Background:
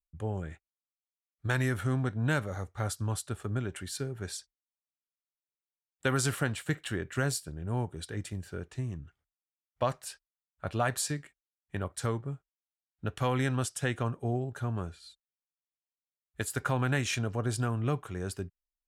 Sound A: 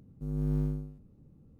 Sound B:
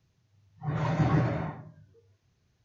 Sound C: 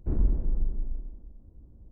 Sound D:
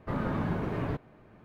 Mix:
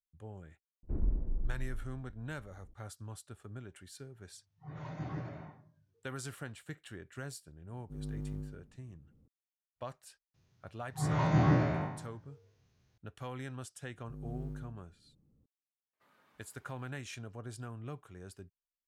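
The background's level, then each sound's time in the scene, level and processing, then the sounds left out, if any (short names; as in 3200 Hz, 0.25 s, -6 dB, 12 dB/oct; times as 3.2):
background -13.5 dB
0.83 add C -7.5 dB
4 add B -15 dB
7.69 add A -8 dB + limiter -24 dBFS
10.34 add B -3 dB + spectral trails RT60 0.73 s
13.87 add A -12 dB
15.93 add D -16 dB + differentiator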